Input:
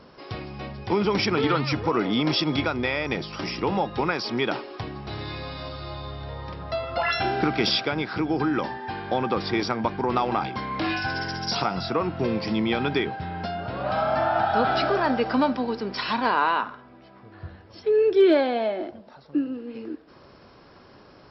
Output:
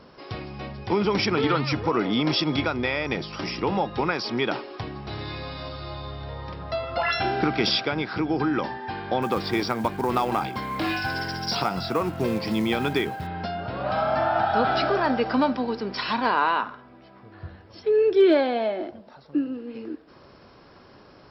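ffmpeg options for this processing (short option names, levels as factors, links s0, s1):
-filter_complex "[0:a]asettb=1/sr,asplit=3[s0][s1][s2];[s0]atrim=end=9.224[s3];[s1]atrim=start=9.22:end=13.27,asetpts=PTS-STARTPTS,afade=t=in:d=0.004:c=qsin,afade=t=out:st=4.046:d=0.004:c=qsin,acrusher=bits=6:mode=log:mix=0:aa=0.000001[s4];[s2]atrim=start=13.266[s5];[s3][s4]acrossfade=d=0.004:c1=hsin:c2=qsin[s6];[s6][s5]acrossfade=d=0.004:c1=qsin:c2=hsin"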